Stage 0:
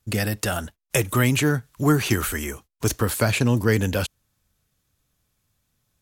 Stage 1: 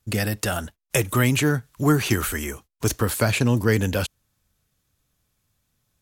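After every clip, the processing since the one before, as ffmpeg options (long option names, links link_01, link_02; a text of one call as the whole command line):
ffmpeg -i in.wav -af anull out.wav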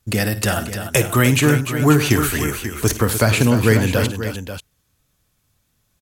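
ffmpeg -i in.wav -af "aecho=1:1:54|101|299|538:0.224|0.1|0.335|0.282,volume=4.5dB" out.wav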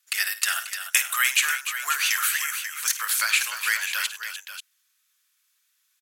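ffmpeg -i in.wav -af "highpass=frequency=1400:width=0.5412,highpass=frequency=1400:width=1.3066" out.wav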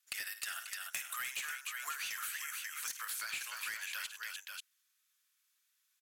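ffmpeg -i in.wav -af "volume=17.5dB,asoftclip=hard,volume=-17.5dB,acompressor=threshold=-30dB:ratio=6,volume=-8dB" out.wav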